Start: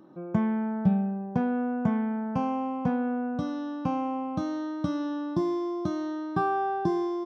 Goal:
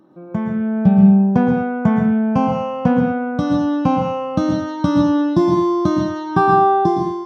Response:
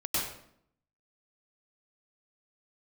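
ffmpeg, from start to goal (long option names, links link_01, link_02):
-filter_complex "[0:a]dynaudnorm=framelen=260:gausssize=5:maxgain=12dB,asplit=2[link_01][link_02];[1:a]atrim=start_sample=2205,afade=type=out:start_time=0.27:duration=0.01,atrim=end_sample=12348,asetrate=37485,aresample=44100[link_03];[link_02][link_03]afir=irnorm=-1:irlink=0,volume=-10dB[link_04];[link_01][link_04]amix=inputs=2:normalize=0,volume=-1dB"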